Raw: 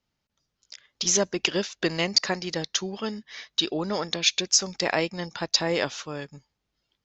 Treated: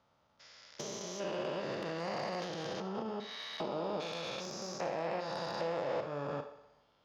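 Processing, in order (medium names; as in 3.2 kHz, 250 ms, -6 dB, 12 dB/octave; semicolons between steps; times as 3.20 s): spectrogram pixelated in time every 400 ms; low-pass 6.8 kHz; compression 8:1, threshold -45 dBFS, peak gain reduction 18.5 dB; treble shelf 4.5 kHz -10 dB; on a send: thinning echo 61 ms, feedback 67%, high-pass 160 Hz, level -15 dB; on the sum: Schroeder reverb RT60 0.39 s, combs from 28 ms, DRR 8.5 dB; 1.73–3.08 s: transient shaper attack -9 dB, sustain +8 dB; saturation -39.5 dBFS, distortion -20 dB; high-pass 73 Hz; high-order bell 820 Hz +9 dB; trim +7.5 dB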